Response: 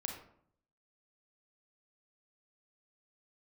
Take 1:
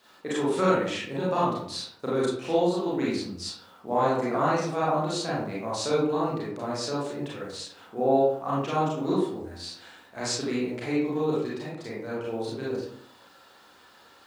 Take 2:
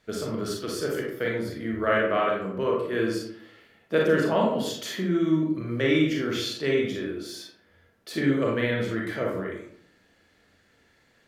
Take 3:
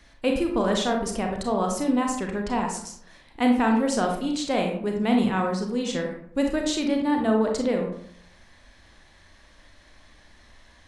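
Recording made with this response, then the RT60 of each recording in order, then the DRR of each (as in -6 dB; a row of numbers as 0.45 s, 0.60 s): 3; 0.65 s, 0.65 s, 0.65 s; -7.5 dB, -2.5 dB, 2.0 dB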